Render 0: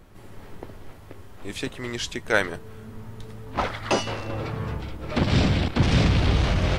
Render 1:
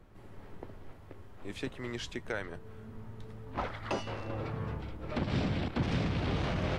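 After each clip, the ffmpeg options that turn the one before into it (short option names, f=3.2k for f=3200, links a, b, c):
-filter_complex "[0:a]highshelf=f=3.7k:g=-9.5,acrossover=split=110[a][b];[a]acompressor=threshold=-32dB:ratio=6[c];[b]alimiter=limit=-16dB:level=0:latency=1:release=320[d];[c][d]amix=inputs=2:normalize=0,volume=-6.5dB"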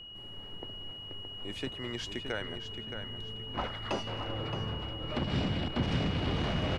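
-filter_complex "[0:a]aeval=exprs='val(0)+0.00562*sin(2*PI*2900*n/s)':c=same,asplit=2[a][b];[b]adelay=620,lowpass=f=4.7k:p=1,volume=-7.5dB,asplit=2[c][d];[d]adelay=620,lowpass=f=4.7k:p=1,volume=0.41,asplit=2[e][f];[f]adelay=620,lowpass=f=4.7k:p=1,volume=0.41,asplit=2[g][h];[h]adelay=620,lowpass=f=4.7k:p=1,volume=0.41,asplit=2[i][j];[j]adelay=620,lowpass=f=4.7k:p=1,volume=0.41[k];[a][c][e][g][i][k]amix=inputs=6:normalize=0"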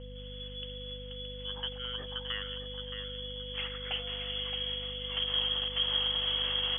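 -af "equalizer=f=960:w=2.1:g=-12,lowpass=f=2.9k:t=q:w=0.5098,lowpass=f=2.9k:t=q:w=0.6013,lowpass=f=2.9k:t=q:w=0.9,lowpass=f=2.9k:t=q:w=2.563,afreqshift=-3400,aeval=exprs='val(0)+0.00631*(sin(2*PI*50*n/s)+sin(2*PI*2*50*n/s)/2+sin(2*PI*3*50*n/s)/3+sin(2*PI*4*50*n/s)/4+sin(2*PI*5*50*n/s)/5)':c=same"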